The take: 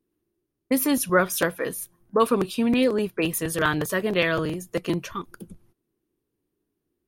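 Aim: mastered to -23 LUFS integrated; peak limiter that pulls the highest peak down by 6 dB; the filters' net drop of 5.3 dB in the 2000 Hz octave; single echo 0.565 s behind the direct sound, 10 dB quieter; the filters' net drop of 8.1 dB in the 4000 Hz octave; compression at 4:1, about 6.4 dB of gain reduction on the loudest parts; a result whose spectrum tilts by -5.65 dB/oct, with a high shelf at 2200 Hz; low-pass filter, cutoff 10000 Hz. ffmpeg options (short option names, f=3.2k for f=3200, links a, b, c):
-af "lowpass=10k,equalizer=f=2k:t=o:g=-4,highshelf=f=2.2k:g=-4.5,equalizer=f=4k:t=o:g=-5,acompressor=threshold=-24dB:ratio=4,alimiter=limit=-20.5dB:level=0:latency=1,aecho=1:1:565:0.316,volume=8dB"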